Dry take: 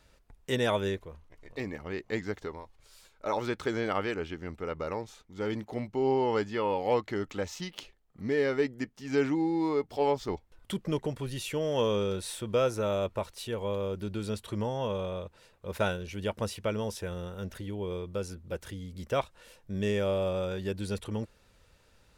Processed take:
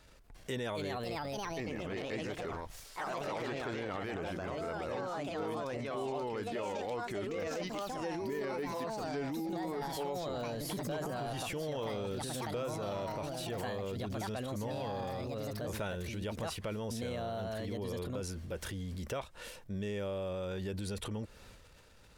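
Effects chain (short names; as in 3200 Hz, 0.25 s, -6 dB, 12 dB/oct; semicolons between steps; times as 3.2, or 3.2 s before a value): echoes that change speed 0.345 s, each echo +3 st, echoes 3; transient shaper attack -4 dB, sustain +7 dB; compressor 5:1, threshold -38 dBFS, peak gain reduction 15.5 dB; gain +2 dB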